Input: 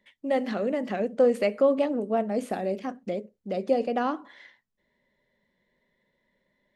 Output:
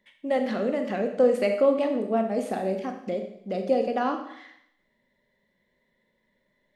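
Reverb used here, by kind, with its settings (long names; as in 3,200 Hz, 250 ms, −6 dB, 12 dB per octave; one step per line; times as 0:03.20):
four-comb reverb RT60 0.75 s, combs from 28 ms, DRR 5.5 dB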